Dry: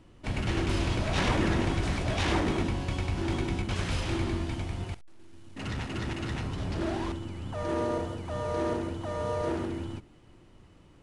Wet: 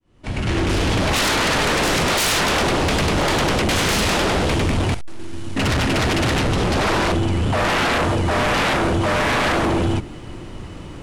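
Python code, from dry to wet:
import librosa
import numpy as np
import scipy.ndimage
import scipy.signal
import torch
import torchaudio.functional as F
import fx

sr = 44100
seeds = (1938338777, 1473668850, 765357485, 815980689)

y = fx.fade_in_head(x, sr, length_s=1.87)
y = fx.fold_sine(y, sr, drive_db=18, ceiling_db=-15.5)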